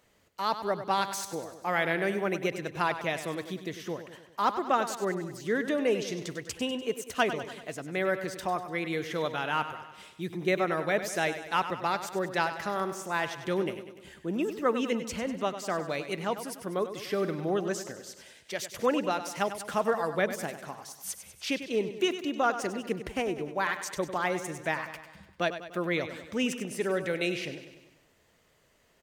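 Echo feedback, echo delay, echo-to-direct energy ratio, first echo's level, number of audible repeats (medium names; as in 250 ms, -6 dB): 56%, 98 ms, -9.5 dB, -11.0 dB, 5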